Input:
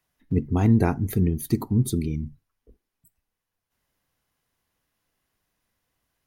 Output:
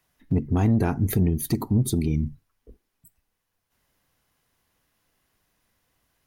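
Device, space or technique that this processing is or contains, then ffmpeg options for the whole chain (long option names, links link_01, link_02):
soft clipper into limiter: -af "asoftclip=type=tanh:threshold=-12dB,alimiter=limit=-19.5dB:level=0:latency=1:release=257,volume=5.5dB"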